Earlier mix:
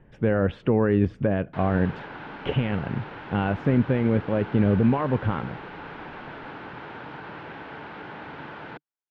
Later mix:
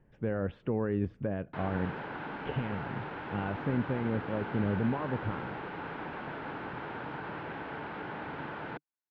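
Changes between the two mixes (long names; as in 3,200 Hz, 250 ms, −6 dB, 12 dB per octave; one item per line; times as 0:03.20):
speech −10.0 dB
master: add high-shelf EQ 4,100 Hz −10 dB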